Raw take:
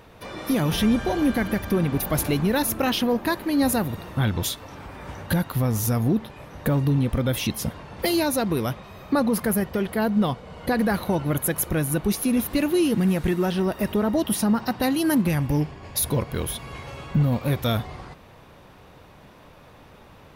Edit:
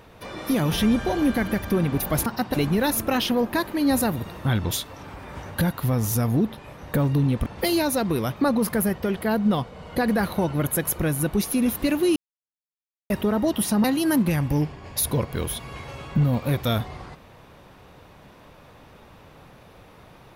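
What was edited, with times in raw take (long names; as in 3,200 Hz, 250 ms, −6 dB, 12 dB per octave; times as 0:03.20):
0:07.18–0:07.87: remove
0:08.77–0:09.07: remove
0:12.87–0:13.81: silence
0:14.55–0:14.83: move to 0:02.26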